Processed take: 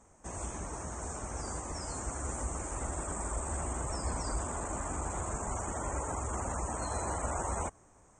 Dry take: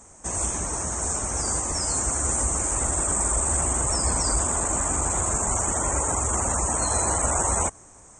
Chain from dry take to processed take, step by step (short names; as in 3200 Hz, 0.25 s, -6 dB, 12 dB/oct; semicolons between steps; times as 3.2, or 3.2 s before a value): high shelf 4400 Hz -12 dB; gain -8.5 dB